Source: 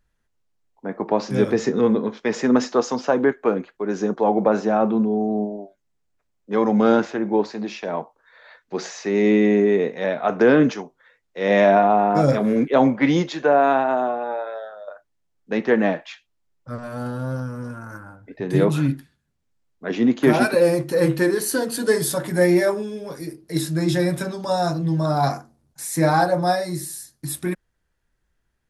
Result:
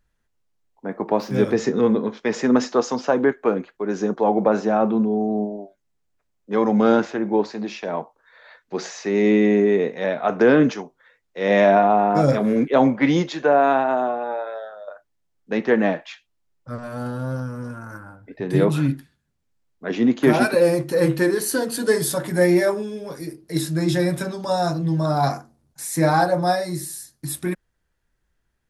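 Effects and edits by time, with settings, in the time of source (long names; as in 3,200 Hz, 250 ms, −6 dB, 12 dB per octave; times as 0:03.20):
0:00.91–0:01.43: running median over 5 samples
0:17.92–0:18.82: notch filter 6,500 Hz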